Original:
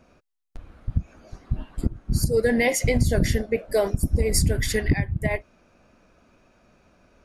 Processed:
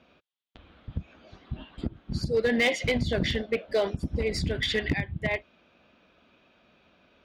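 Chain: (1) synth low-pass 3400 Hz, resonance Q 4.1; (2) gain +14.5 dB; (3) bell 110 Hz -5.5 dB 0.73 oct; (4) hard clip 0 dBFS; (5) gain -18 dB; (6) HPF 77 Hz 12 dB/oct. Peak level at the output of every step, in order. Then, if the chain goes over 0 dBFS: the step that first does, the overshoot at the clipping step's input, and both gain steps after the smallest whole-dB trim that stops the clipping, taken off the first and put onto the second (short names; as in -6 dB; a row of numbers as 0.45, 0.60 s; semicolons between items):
-8.5, +6.0, +5.5, 0.0, -18.0, -15.0 dBFS; step 2, 5.5 dB; step 2 +8.5 dB, step 5 -12 dB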